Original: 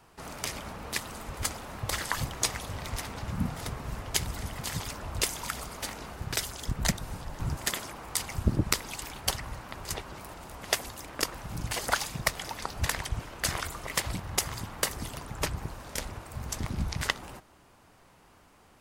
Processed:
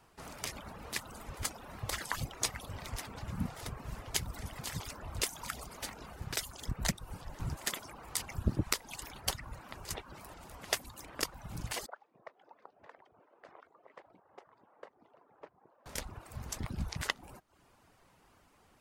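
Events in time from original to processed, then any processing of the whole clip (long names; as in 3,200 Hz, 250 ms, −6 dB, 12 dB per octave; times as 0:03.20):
0:11.86–0:15.86: four-pole ladder band-pass 610 Hz, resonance 20%
whole clip: reverb reduction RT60 0.55 s; level −5 dB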